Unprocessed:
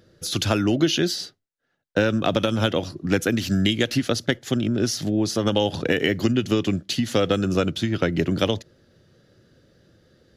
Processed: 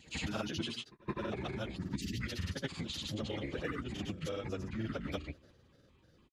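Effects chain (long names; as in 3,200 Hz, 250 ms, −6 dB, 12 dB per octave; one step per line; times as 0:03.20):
pitch shifter gated in a rhythm −7 semitones, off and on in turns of 207 ms
transient designer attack +3 dB, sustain +7 dB
time-frequency box erased 0:03.13–0:03.63, 440–1,700 Hz
mains-hum notches 60/120/180/240/300/360/420 Hz
time stretch by phase vocoder 0.61×
downward compressor, threshold −30 dBFS, peak gain reduction 12.5 dB
granular cloud, pitch spread up and down by 0 semitones
on a send: backwards echo 168 ms −22 dB
on the sum: level −4 dB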